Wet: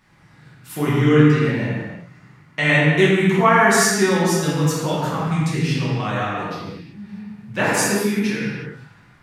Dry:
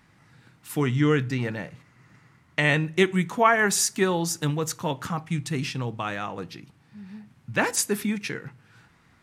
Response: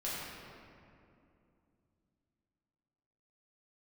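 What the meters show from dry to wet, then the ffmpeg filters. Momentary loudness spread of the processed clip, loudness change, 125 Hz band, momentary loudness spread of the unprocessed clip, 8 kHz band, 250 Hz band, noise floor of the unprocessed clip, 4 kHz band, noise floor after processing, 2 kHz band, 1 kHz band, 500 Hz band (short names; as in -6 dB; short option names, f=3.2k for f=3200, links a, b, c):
20 LU, +7.0 dB, +8.5 dB, 16 LU, +3.0 dB, +8.5 dB, -60 dBFS, +5.5 dB, -51 dBFS, +6.5 dB, +6.5 dB, +7.5 dB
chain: -filter_complex "[1:a]atrim=start_sample=2205,afade=t=out:st=0.44:d=0.01,atrim=end_sample=19845[a];[0:a][a]afir=irnorm=-1:irlink=0,volume=3dB"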